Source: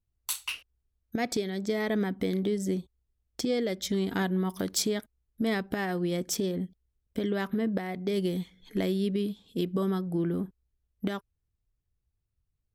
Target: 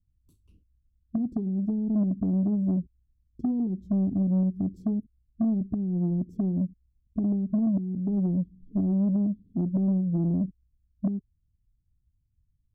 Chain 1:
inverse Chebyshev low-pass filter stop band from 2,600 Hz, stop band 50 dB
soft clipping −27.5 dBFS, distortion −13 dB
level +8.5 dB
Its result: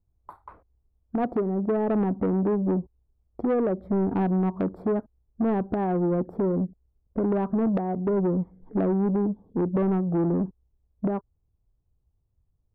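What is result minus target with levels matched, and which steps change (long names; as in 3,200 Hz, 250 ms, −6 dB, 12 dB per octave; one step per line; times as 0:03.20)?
500 Hz band +12.5 dB
change: inverse Chebyshev low-pass filter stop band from 690 Hz, stop band 50 dB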